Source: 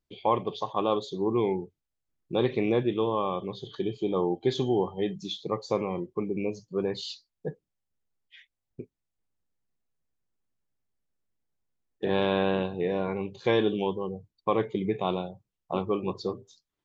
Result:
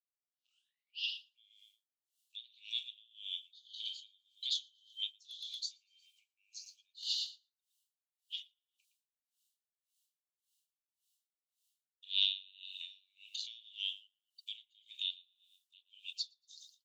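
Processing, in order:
turntable start at the beginning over 1.38 s
in parallel at +1.5 dB: downward compressor, threshold −34 dBFS, peak gain reduction 14 dB
on the sum: Chebyshev high-pass with heavy ripple 2,800 Hz, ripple 3 dB
gain into a clipping stage and back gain 24.5 dB
on a send: repeating echo 115 ms, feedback 35%, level −14 dB
on the sum: tremolo with a sine in dB 1.8 Hz, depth 29 dB
level +10 dB

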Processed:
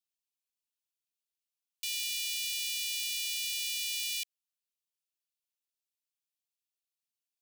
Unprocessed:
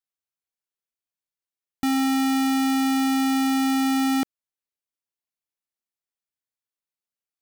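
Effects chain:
Butterworth high-pass 2,400 Hz 72 dB per octave

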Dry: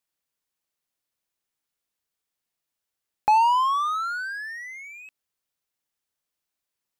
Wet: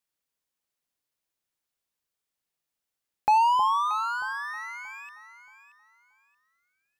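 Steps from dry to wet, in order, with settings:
delay that swaps between a low-pass and a high-pass 314 ms, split 890 Hz, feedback 50%, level −7 dB
level −2 dB

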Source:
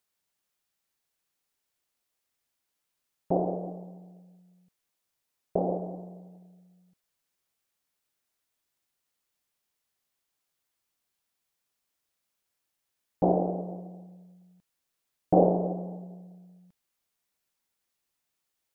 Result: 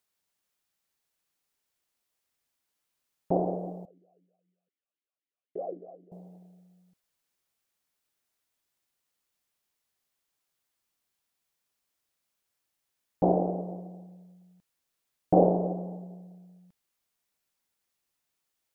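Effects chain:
0:03.85–0:06.12: formant filter swept between two vowels a-i 3.9 Hz

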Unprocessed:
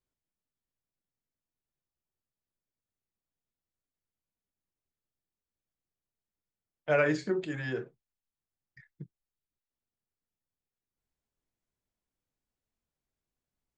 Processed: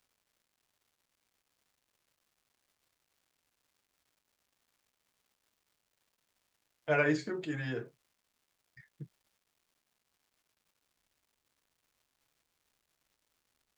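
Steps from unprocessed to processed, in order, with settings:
notch comb filter 190 Hz
surface crackle 470 per second −63 dBFS

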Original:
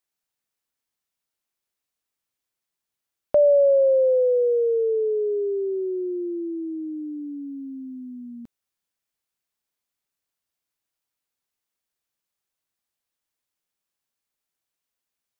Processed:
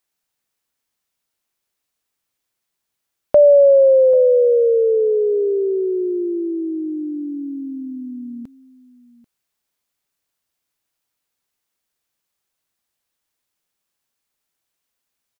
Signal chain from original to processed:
single-tap delay 789 ms −18.5 dB
level +6.5 dB

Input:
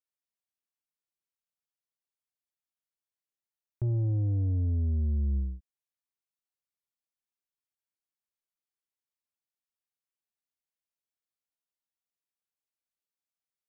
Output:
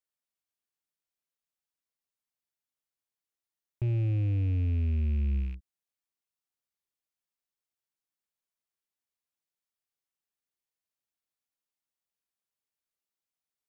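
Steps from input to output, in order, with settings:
loose part that buzzes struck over −34 dBFS, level −42 dBFS

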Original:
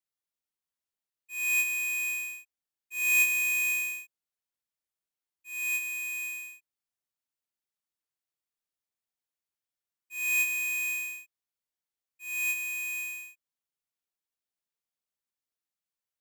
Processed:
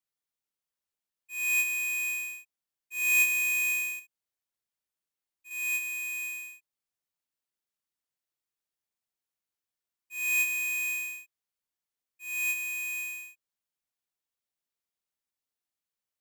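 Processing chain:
0:03.99–0:05.51: downward compressor, threshold −49 dBFS, peak gain reduction 6 dB

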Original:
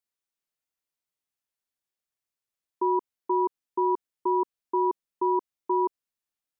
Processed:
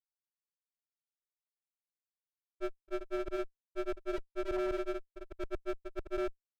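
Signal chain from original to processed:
downward expander −17 dBFS
granular cloud 100 ms, grains 20 per second, spray 560 ms, pitch spread up and down by 0 semitones
windowed peak hold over 33 samples
level +1 dB

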